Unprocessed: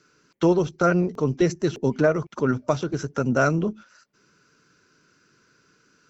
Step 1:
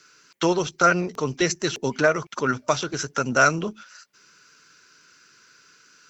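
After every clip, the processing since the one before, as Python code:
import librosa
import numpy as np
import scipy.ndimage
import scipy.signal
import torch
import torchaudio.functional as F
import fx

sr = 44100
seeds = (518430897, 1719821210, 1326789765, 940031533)

y = fx.tilt_shelf(x, sr, db=-8.5, hz=850.0)
y = y * 10.0 ** (2.5 / 20.0)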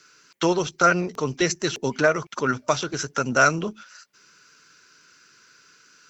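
y = x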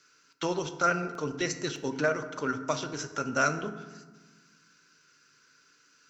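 y = fx.rev_fdn(x, sr, rt60_s=1.3, lf_ratio=1.5, hf_ratio=0.5, size_ms=21.0, drr_db=8.0)
y = y * 10.0 ** (-8.5 / 20.0)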